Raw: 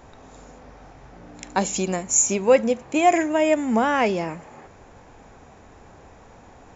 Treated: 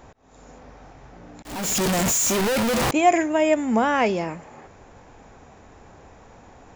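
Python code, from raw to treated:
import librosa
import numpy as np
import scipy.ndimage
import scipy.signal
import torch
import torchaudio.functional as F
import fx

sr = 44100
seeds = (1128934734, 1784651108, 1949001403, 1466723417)

y = fx.clip_1bit(x, sr, at=(1.45, 2.91))
y = fx.auto_swell(y, sr, attack_ms=395.0)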